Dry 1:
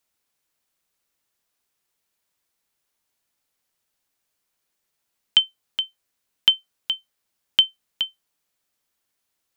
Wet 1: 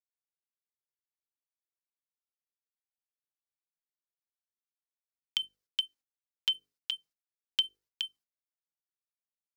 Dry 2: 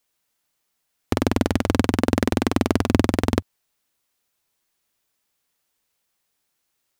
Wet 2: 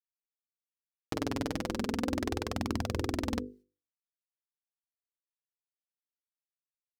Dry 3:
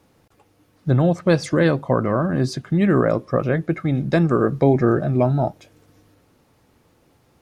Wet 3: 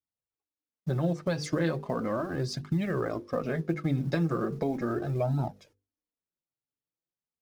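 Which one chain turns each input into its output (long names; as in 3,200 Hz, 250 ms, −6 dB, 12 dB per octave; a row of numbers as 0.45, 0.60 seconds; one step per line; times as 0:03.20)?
mu-law and A-law mismatch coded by A
noise gate −50 dBFS, range −30 dB
parametric band 5,100 Hz +5 dB 0.6 octaves
mains-hum notches 50/100/150/200/250/300/350/400/450/500 Hz
brickwall limiter −8.5 dBFS
downward compressor 3 to 1, threshold −22 dBFS
flanger 0.37 Hz, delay 0.7 ms, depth 6.7 ms, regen −9%
level −1.5 dB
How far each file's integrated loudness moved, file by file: −12.0, −12.5, −11.0 LU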